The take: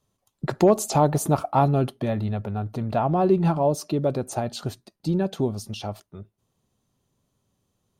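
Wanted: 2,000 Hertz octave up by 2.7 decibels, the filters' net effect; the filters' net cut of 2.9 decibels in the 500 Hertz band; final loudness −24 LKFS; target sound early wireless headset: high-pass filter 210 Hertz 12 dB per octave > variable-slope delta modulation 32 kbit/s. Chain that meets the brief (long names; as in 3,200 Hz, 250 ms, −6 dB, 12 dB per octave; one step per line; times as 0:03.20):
high-pass filter 210 Hz 12 dB per octave
parametric band 500 Hz −4 dB
parametric band 2,000 Hz +4 dB
variable-slope delta modulation 32 kbit/s
level +3.5 dB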